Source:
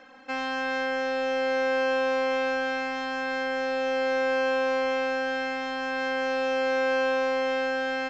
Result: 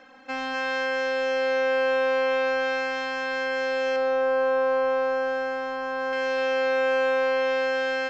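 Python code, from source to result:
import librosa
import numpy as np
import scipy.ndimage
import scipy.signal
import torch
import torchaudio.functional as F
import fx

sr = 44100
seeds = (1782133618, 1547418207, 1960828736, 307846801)

y = fx.high_shelf_res(x, sr, hz=1600.0, db=-7.5, q=1.5, at=(3.96, 6.13))
y = y + 10.0 ** (-8.0 / 20.0) * np.pad(y, (int(253 * sr / 1000.0), 0))[:len(y)]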